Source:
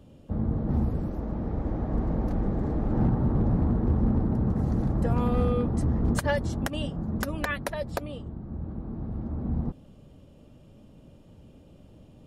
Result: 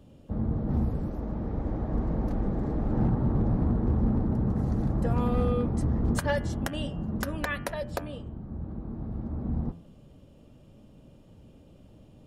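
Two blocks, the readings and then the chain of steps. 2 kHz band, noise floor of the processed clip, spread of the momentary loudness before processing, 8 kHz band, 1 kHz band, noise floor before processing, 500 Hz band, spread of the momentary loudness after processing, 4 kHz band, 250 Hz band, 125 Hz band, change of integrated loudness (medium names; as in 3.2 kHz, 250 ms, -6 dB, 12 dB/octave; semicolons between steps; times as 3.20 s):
-1.5 dB, -54 dBFS, 11 LU, -1.0 dB, -1.5 dB, -53 dBFS, -1.0 dB, 11 LU, -1.0 dB, -1.5 dB, -1.5 dB, -1.5 dB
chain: de-hum 84.46 Hz, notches 39; trim -1 dB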